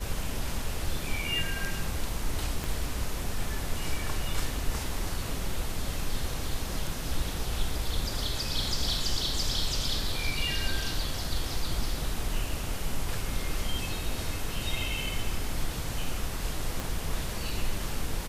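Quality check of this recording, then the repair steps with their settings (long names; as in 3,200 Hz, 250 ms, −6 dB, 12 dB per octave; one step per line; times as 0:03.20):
0:02.64: click
0:16.80: click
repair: click removal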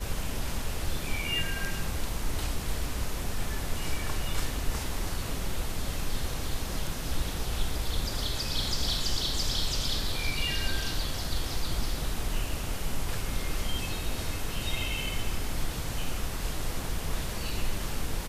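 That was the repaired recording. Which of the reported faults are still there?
0:02.64: click
0:16.80: click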